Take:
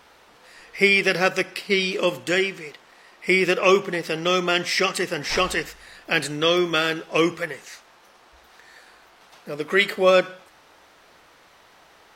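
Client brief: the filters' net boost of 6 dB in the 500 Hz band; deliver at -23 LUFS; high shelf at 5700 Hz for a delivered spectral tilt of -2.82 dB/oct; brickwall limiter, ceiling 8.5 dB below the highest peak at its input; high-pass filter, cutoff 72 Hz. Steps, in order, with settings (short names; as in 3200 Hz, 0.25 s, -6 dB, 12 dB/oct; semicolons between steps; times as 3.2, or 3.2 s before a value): HPF 72 Hz; bell 500 Hz +7.5 dB; high shelf 5700 Hz -7.5 dB; gain -2 dB; limiter -11.5 dBFS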